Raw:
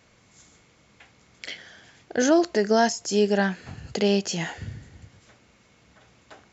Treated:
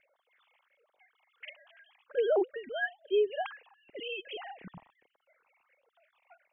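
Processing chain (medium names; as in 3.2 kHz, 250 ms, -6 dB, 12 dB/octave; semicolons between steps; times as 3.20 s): formants replaced by sine waves; compression 2:1, threshold -23 dBFS, peak gain reduction 7 dB; phase shifter stages 6, 1.4 Hz, lowest notch 390–2300 Hz; trim -2 dB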